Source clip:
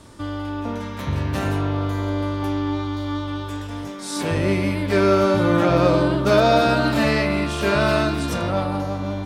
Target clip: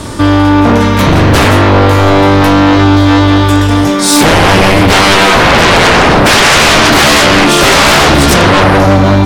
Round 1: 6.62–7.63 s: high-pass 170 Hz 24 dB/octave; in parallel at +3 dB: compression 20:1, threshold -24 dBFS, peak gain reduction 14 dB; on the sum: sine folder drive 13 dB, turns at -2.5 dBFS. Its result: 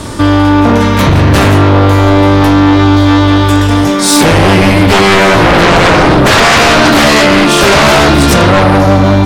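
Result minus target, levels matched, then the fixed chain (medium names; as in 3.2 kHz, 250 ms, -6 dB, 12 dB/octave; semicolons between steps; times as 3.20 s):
compression: peak gain reduction +7.5 dB
6.62–7.63 s: high-pass 170 Hz 24 dB/octave; in parallel at +3 dB: compression 20:1, threshold -16 dBFS, peak gain reduction 6.5 dB; on the sum: sine folder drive 13 dB, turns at -2.5 dBFS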